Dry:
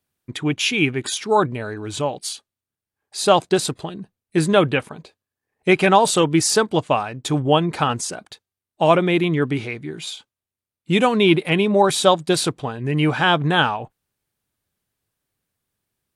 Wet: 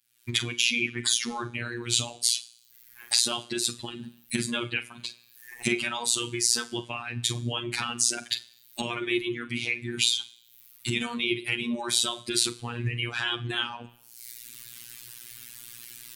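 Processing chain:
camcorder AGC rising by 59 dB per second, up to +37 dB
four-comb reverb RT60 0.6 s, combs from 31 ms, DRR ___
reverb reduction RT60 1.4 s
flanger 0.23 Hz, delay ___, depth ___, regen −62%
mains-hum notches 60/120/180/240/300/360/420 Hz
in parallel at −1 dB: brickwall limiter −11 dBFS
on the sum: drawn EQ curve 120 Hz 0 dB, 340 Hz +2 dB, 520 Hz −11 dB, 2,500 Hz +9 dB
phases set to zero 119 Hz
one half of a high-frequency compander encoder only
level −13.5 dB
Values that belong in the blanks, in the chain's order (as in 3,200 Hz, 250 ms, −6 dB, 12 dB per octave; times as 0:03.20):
5.5 dB, 1.2 ms, 7.1 ms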